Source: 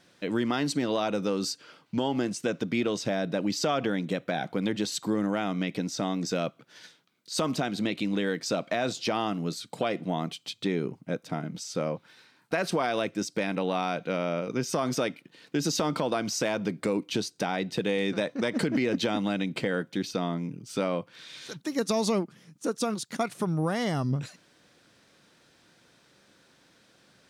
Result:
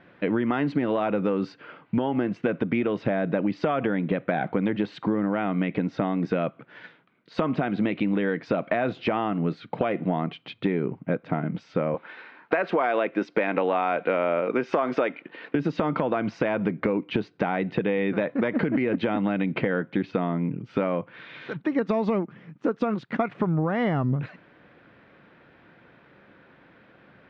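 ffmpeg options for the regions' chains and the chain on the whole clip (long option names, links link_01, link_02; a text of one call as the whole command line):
ffmpeg -i in.wav -filter_complex "[0:a]asettb=1/sr,asplit=3[link_01][link_02][link_03];[link_01]atrim=end=11.944[link_04];[link_02]atrim=start=11.94:end=15.55,asetpts=PTS-STARTPTS,afade=type=in:duration=0.004:curve=qsin,afade=type=out:start_time=3.606:duration=0.004:curve=qsin,highpass=340,acontrast=68[link_05];[link_03]atrim=start=15.546[link_06];[link_04][link_05]acrossfade=duration=0.004:curve1=hsin:curve2=qsin[link_07];[link_07][link_06]acrossfade=duration=0.004:curve1=qsin:curve2=hsin,lowpass=frequency=2400:width=0.5412,lowpass=frequency=2400:width=1.3066,acompressor=threshold=-29dB:ratio=6,volume=8.5dB" out.wav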